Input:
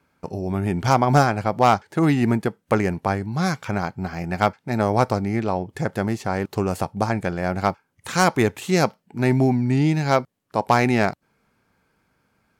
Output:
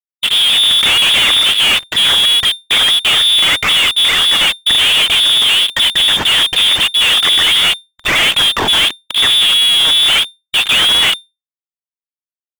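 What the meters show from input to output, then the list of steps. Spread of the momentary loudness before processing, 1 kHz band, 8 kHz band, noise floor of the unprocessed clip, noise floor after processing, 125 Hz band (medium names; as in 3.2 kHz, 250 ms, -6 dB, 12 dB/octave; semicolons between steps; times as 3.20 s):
8 LU, -1.0 dB, +17.0 dB, -71 dBFS, under -85 dBFS, -12.5 dB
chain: phaser 1.5 Hz, delay 4.5 ms, feedback 60%; fuzz box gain 39 dB, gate -40 dBFS; frequency inversion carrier 3.6 kHz; power-law waveshaper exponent 0.5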